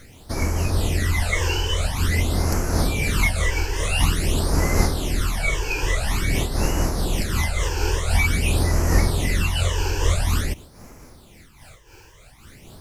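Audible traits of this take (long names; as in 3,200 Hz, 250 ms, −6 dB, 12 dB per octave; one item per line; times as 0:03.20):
phaser sweep stages 12, 0.48 Hz, lowest notch 200–3,500 Hz
a quantiser's noise floor 10 bits, dither none
amplitude modulation by smooth noise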